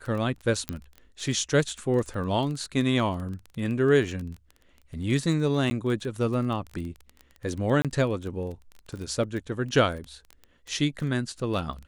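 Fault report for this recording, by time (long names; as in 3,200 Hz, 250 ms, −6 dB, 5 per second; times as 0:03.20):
surface crackle 15 per second −32 dBFS
0:00.69: click −13 dBFS
0:05.70–0:05.71: drop-out 10 ms
0:07.82–0:07.85: drop-out 27 ms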